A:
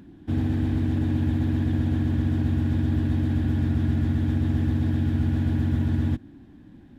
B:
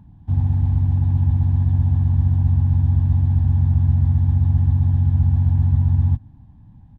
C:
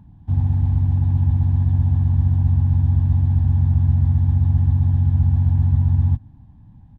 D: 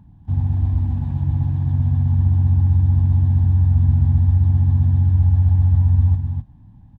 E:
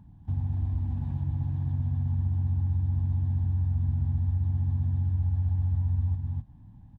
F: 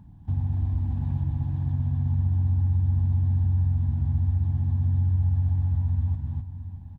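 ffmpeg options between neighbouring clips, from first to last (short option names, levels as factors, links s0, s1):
-af "firequalizer=gain_entry='entry(120,0);entry(340,-28);entry(880,-4);entry(1400,-21)':delay=0.05:min_phase=1,volume=2.66"
-af anull
-af "aecho=1:1:252:0.531,volume=0.891"
-af "acompressor=threshold=0.0562:ratio=2,volume=0.596"
-af "aecho=1:1:620:0.211,volume=1.41"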